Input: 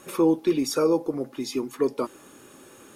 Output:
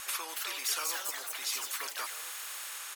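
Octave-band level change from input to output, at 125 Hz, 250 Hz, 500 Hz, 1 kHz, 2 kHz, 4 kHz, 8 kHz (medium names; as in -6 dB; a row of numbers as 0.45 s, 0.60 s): under -40 dB, -36.0 dB, -26.5 dB, -5.5 dB, +6.0 dB, +3.0 dB, +5.0 dB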